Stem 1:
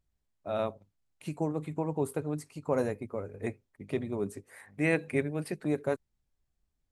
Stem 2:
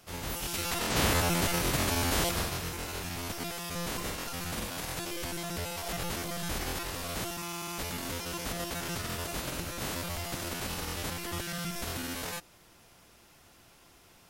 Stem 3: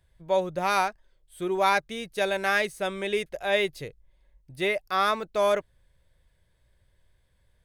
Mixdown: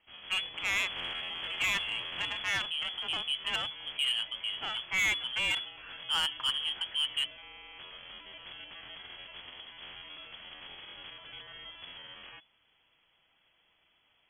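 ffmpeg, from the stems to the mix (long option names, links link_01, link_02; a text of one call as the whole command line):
ffmpeg -i stem1.wav -i stem2.wav -i stem3.wav -filter_complex "[0:a]adelay=1300,volume=0.5dB[link_01];[1:a]volume=-10.5dB[link_02];[2:a]equalizer=frequency=1200:width_type=o:width=0.33:gain=9.5,aeval=exprs='0.398*(cos(1*acos(clip(val(0)/0.398,-1,1)))-cos(1*PI/2))+0.0562*(cos(7*acos(clip(val(0)/0.398,-1,1)))-cos(7*PI/2))+0.0282*(cos(8*acos(clip(val(0)/0.398,-1,1)))-cos(8*PI/2))':channel_layout=same,volume=-5dB,asplit=2[link_03][link_04];[link_04]apad=whole_len=366761[link_05];[link_01][link_05]sidechaincompress=threshold=-40dB:ratio=3:attack=35:release=228[link_06];[link_06][link_02][link_03]amix=inputs=3:normalize=0,lowpass=frequency=2900:width_type=q:width=0.5098,lowpass=frequency=2900:width_type=q:width=0.6013,lowpass=frequency=2900:width_type=q:width=0.9,lowpass=frequency=2900:width_type=q:width=2.563,afreqshift=-3400,asoftclip=type=tanh:threshold=-24dB,lowshelf=frequency=230:gain=10.5" out.wav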